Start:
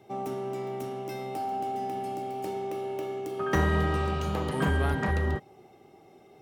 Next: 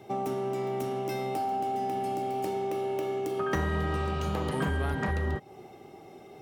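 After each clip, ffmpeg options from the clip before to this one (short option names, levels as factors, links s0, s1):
-af "acompressor=threshold=0.0178:ratio=3,volume=2"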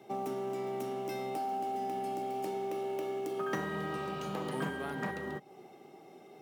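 -filter_complex "[0:a]highpass=f=150:w=0.5412,highpass=f=150:w=1.3066,asplit=2[s0][s1];[s1]acrusher=bits=4:mode=log:mix=0:aa=0.000001,volume=0.355[s2];[s0][s2]amix=inputs=2:normalize=0,volume=0.422"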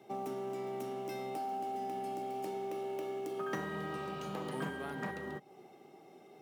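-af "equalizer=f=16000:w=6.3:g=-4,volume=0.708"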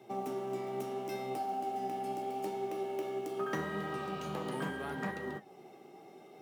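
-af "areverse,acompressor=mode=upward:threshold=0.00251:ratio=2.5,areverse,flanger=delay=7.6:depth=9.5:regen=64:speed=0.76:shape=triangular,volume=2"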